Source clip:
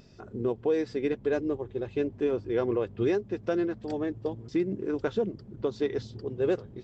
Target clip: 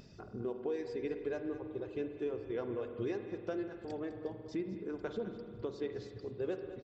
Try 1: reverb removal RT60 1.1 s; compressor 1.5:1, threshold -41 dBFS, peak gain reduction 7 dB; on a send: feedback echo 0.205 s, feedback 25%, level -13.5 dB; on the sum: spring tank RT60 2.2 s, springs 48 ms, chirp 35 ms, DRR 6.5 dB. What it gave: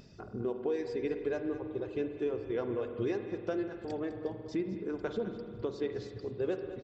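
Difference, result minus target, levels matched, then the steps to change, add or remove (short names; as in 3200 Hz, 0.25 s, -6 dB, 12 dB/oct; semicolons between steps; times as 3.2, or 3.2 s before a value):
compressor: peak gain reduction -4 dB
change: compressor 1.5:1, threshold -53 dBFS, peak gain reduction 11 dB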